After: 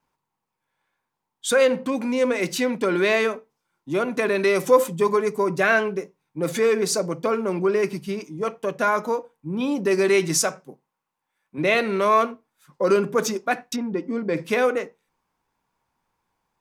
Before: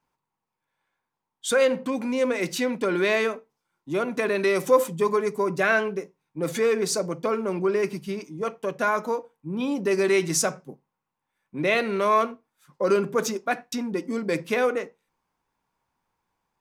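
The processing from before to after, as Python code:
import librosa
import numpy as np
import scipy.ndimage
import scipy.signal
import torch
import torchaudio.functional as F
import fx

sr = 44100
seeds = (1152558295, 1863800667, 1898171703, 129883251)

y = fx.low_shelf(x, sr, hz=270.0, db=-9.0, at=(10.37, 11.58))
y = fx.wow_flutter(y, sr, seeds[0], rate_hz=2.1, depth_cents=23.0)
y = fx.spacing_loss(y, sr, db_at_10k=22, at=(13.76, 14.37))
y = F.gain(torch.from_numpy(y), 2.5).numpy()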